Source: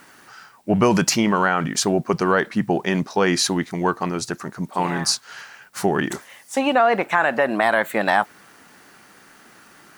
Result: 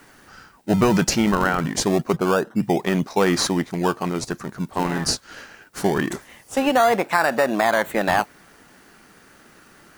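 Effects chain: 2.15–2.62 elliptic low-pass 1500 Hz; in parallel at -7 dB: decimation with a swept rate 27×, swing 100% 0.24 Hz; on the sum: gain -2.5 dB

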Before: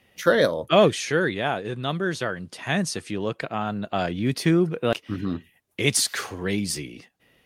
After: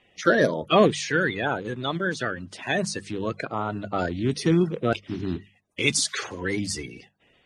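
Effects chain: bin magnitudes rounded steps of 30 dB; LPF 8800 Hz 24 dB/oct; notches 50/100/150/200 Hz

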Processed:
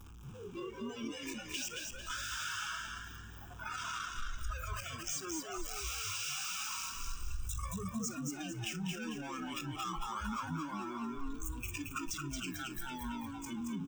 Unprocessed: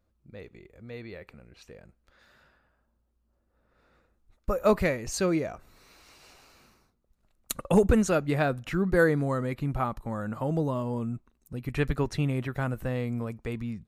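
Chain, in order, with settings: infinite clipping; spectral noise reduction 23 dB; dynamic EQ 4900 Hz, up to +4 dB, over -48 dBFS, Q 2.4; compressor, threshold -38 dBFS, peak gain reduction 10 dB; fixed phaser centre 2900 Hz, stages 8; on a send: frequency-shifting echo 0.224 s, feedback 41%, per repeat +41 Hz, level -4 dB; on the sum: gain +2 dB

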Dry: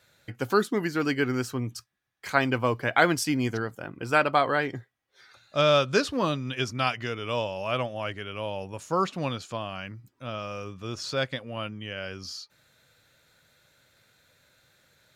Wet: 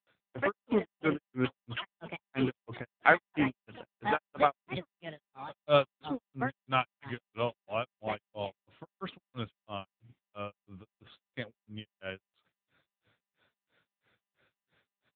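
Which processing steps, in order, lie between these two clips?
echoes that change speed 0.119 s, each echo +6 st, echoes 3, each echo -6 dB; grains 0.193 s, grains 3/s; AMR-NB 6.7 kbps 8000 Hz

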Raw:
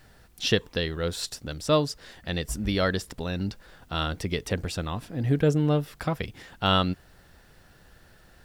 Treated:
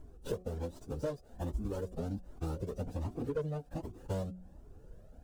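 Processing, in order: median filter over 41 samples; plain phase-vocoder stretch 0.62×; graphic EQ 125/500/2000/4000/8000 Hz -5/+3/-11/-4/+4 dB; hard clip -21.5 dBFS, distortion -17 dB; compressor 10:1, threshold -39 dBFS, peak gain reduction 15.5 dB; bell 250 Hz +4 dB 0.26 oct; de-hum 182.7 Hz, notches 4; cascading flanger rising 1.3 Hz; gain +10 dB

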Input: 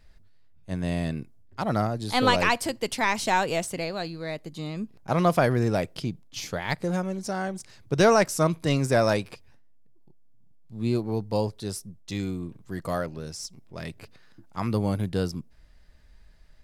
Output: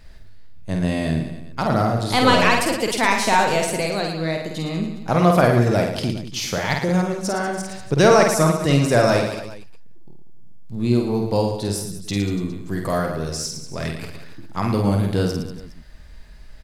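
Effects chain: in parallel at +3 dB: compressor, threshold -37 dBFS, peak gain reduction 21 dB; on the sum: reverse bouncing-ball echo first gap 50 ms, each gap 1.25×, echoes 5; gain +2.5 dB

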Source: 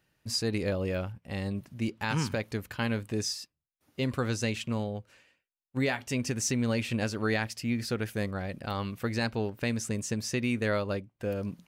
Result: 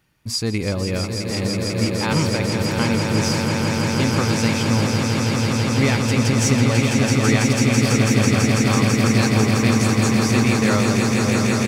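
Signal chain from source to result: comb 0.9 ms, depth 33%; on a send: swelling echo 0.165 s, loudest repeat 8, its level -6 dB; on the sum: gain +7 dB

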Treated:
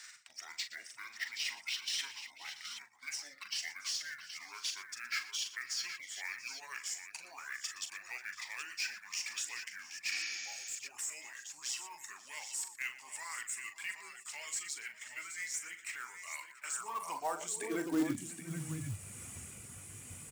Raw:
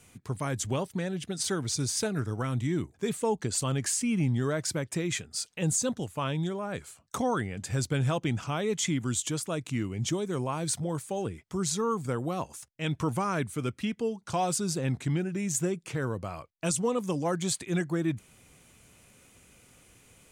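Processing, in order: gliding pitch shift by -9 st ending unshifted; notch 6200 Hz, Q 13; reverb removal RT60 0.77 s; ten-band EQ 500 Hz -6 dB, 4000 Hz -7 dB, 8000 Hz +9 dB; reverse; compressor 12:1, threshold -40 dBFS, peak gain reduction 18 dB; reverse; limiter -37 dBFS, peak gain reduction 10 dB; tapped delay 41/119/539/684/773 ms -9/-15.5/-20/-17.5/-9.5 dB; high-pass sweep 2000 Hz -> 83 Hz, 16.46–19.12; short-mantissa float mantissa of 2-bit; spectral repair 10.14–10.73, 860–6900 Hz both; gain +8.5 dB

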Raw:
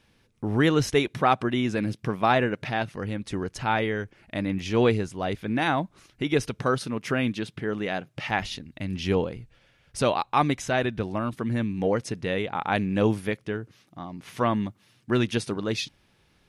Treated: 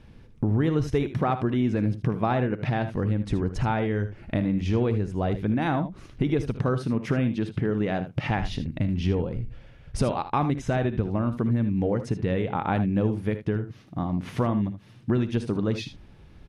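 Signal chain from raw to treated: tilt -3 dB/oct; compressor 4:1, threshold -29 dBFS, peak gain reduction 15.5 dB; on a send: early reflections 56 ms -16 dB, 77 ms -12 dB; on the sum: gain +6 dB

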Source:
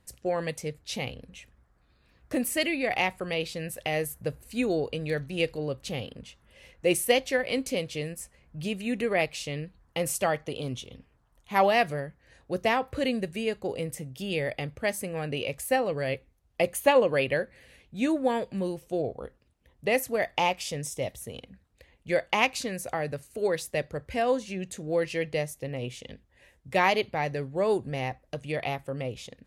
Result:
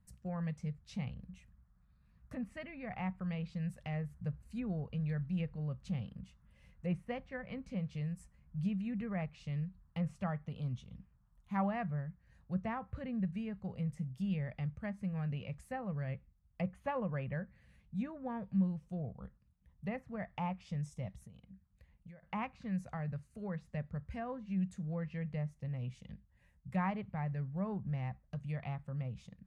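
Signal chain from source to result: treble ducked by the level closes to 1900 Hz, closed at -24 dBFS; EQ curve 130 Hz 0 dB, 190 Hz +5 dB, 320 Hz -22 dB, 1200 Hz -8 dB, 3200 Hz -18 dB, 7900 Hz -15 dB; 21.2–22.23 compressor 16:1, threshold -49 dBFS, peak gain reduction 19 dB; gain -2 dB

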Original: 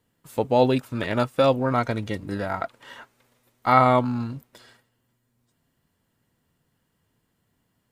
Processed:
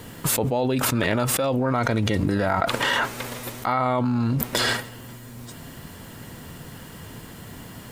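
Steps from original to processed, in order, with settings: fast leveller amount 100%; gain -8.5 dB

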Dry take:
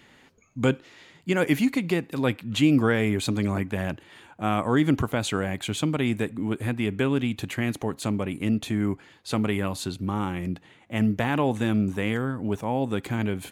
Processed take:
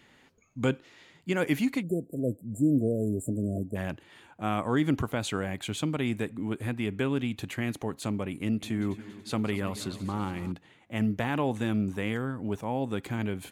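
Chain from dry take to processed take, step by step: 1.83–3.76 spectral delete 710–7100 Hz; 8.35–10.52 multi-head echo 94 ms, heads second and third, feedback 55%, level -17 dB; gain -4.5 dB

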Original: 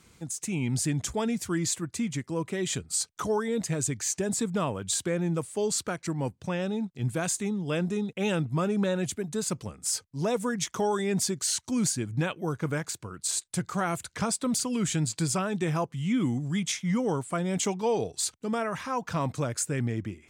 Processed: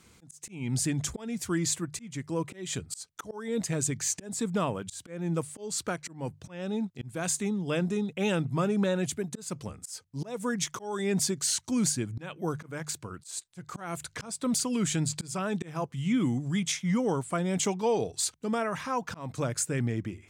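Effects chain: notches 50/100/150 Hz; auto swell 0.275 s

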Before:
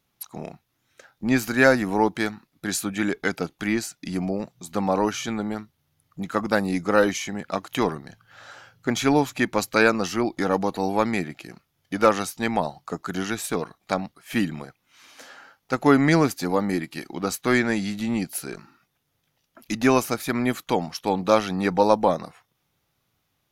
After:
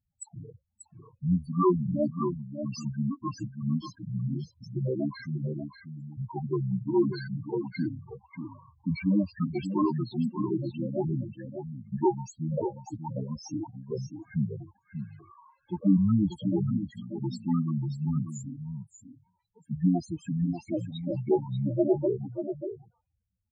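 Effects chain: pitch shift -6.5 st; loudest bins only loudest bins 4; echo 0.588 s -8.5 dB; gain -3 dB

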